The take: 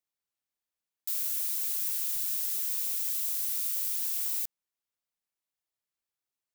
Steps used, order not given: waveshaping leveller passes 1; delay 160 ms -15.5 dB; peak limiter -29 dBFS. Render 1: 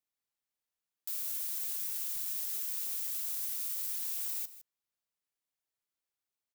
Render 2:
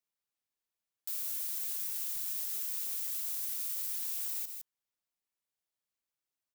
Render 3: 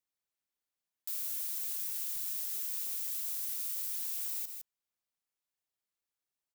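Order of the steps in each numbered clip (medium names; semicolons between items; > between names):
peak limiter > waveshaping leveller > delay; delay > peak limiter > waveshaping leveller; waveshaping leveller > delay > peak limiter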